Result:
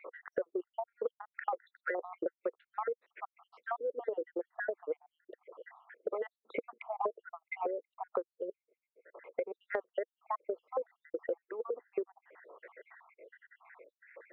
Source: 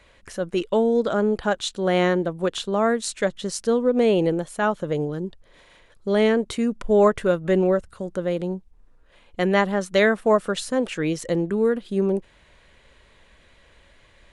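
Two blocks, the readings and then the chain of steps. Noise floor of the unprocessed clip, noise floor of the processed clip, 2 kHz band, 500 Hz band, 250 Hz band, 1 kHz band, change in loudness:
−56 dBFS, below −85 dBFS, −15.5 dB, −16.5 dB, −25.5 dB, −12.5 dB, −17.0 dB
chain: time-frequency cells dropped at random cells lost 74%
Chebyshev band-pass filter 350–2,100 Hz, order 4
harmonic and percussive parts rebalanced harmonic −16 dB
parametric band 480 Hz +9 dB 0.42 octaves
speech leveller 2 s
dynamic equaliser 1,600 Hz, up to −5 dB, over −52 dBFS, Q 2.1
downward compressor 16 to 1, threshold −41 dBFS, peak gain reduction 31 dB
level +8.5 dB

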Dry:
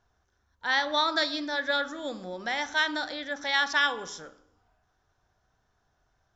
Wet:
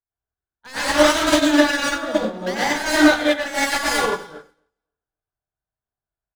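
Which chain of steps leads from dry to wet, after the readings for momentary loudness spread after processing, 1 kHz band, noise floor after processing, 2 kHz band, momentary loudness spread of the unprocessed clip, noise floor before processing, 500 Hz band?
9 LU, +7.5 dB, below −85 dBFS, +6.5 dB, 12 LU, −73 dBFS, +14.5 dB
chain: low-pass filter 3,400 Hz 24 dB per octave
in parallel at +0.5 dB: brickwall limiter −23.5 dBFS, peak gain reduction 11 dB
on the sum: wave folding −23 dBFS
on a send: repeating echo 271 ms, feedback 33%, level −15 dB
on the sum: dense smooth reverb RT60 0.7 s, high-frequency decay 0.75×, pre-delay 85 ms, DRR −7.5 dB
expander for the loud parts 2.5 to 1, over −45 dBFS
level +7.5 dB

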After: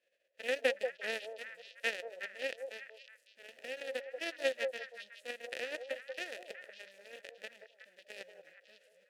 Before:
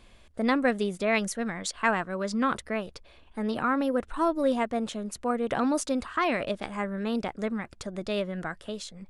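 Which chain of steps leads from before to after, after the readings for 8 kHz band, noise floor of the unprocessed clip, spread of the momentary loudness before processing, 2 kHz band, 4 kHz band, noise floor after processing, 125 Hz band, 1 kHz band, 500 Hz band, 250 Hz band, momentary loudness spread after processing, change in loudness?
−15.0 dB, −55 dBFS, 10 LU, −7.0 dB, −5.0 dB, −73 dBFS, below −35 dB, −22.0 dB, −9.5 dB, −28.0 dB, 20 LU, −10.5 dB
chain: spectral envelope flattened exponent 0.1
harmonic generator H 7 −16 dB, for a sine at −4.5 dBFS
formant filter e
echo through a band-pass that steps 184 ms, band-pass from 580 Hz, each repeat 1.4 octaves, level −3.5 dB
level +8.5 dB

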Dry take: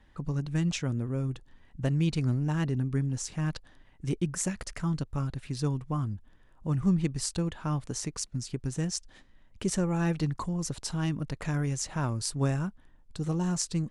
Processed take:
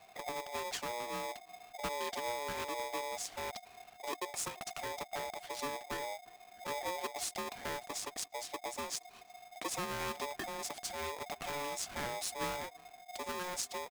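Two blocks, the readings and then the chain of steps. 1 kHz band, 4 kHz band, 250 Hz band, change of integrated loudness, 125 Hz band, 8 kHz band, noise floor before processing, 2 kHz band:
+3.0 dB, −1.5 dB, −19.5 dB, −8.5 dB, −28.0 dB, −5.0 dB, −58 dBFS, +0.5 dB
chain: parametric band 180 Hz −10 dB 1 octave
downward compressor 1.5 to 1, threshold −50 dBFS, peak gain reduction 8.5 dB
far-end echo of a speakerphone 350 ms, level −25 dB
ring modulator with a square carrier 720 Hz
level +1.5 dB

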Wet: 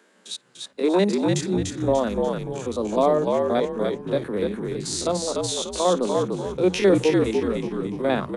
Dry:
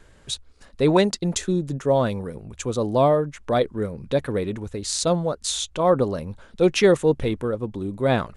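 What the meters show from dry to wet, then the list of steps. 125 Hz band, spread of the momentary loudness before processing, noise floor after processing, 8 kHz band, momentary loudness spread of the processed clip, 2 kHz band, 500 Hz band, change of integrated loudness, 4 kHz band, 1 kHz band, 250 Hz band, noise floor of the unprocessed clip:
−3.5 dB, 13 LU, −58 dBFS, −1.5 dB, 9 LU, −1.5 dB, 0.0 dB, 0.0 dB, −1.0 dB, −0.5 dB, +1.0 dB, −52 dBFS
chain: spectrum averaged block by block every 50 ms
Chebyshev high-pass filter 180 Hz, order 10
echo with shifted repeats 294 ms, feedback 38%, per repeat −58 Hz, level −3 dB

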